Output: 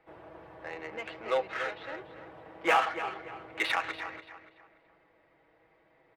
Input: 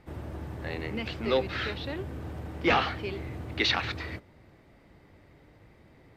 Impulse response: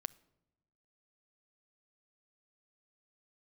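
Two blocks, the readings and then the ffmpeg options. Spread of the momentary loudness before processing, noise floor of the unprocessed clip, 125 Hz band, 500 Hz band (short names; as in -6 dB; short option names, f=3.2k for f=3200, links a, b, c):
14 LU, -58 dBFS, -21.5 dB, -3.0 dB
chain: -filter_complex "[0:a]acrossover=split=480 3200:gain=0.0708 1 0.1[a][b][c];[a][b][c]amix=inputs=3:normalize=0,aecho=1:1:6.2:0.53,asplit=2[d][e];[e]adynamicsmooth=sensitivity=4.5:basefreq=790,volume=-2dB[f];[d][f]amix=inputs=2:normalize=0,asplit=2[g][h];[h]adelay=288,lowpass=f=4.1k:p=1,volume=-11dB,asplit=2[i][j];[j]adelay=288,lowpass=f=4.1k:p=1,volume=0.34,asplit=2[k][l];[l]adelay=288,lowpass=f=4.1k:p=1,volume=0.34,asplit=2[m][n];[n]adelay=288,lowpass=f=4.1k:p=1,volume=0.34[o];[g][i][k][m][o]amix=inputs=5:normalize=0,volume=-4dB"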